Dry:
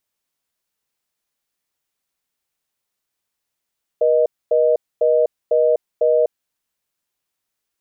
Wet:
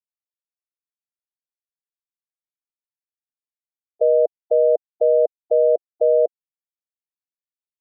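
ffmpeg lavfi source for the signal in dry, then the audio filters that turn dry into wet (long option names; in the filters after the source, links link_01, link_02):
-f lavfi -i "aevalsrc='0.178*(sin(2*PI*480*t)+sin(2*PI*620*t))*clip(min(mod(t,0.5),0.25-mod(t,0.5))/0.005,0,1)':duration=2.36:sample_rate=44100"
-af "afftfilt=real='re*gte(hypot(re,im),0.126)':imag='im*gte(hypot(re,im),0.126)':win_size=1024:overlap=0.75"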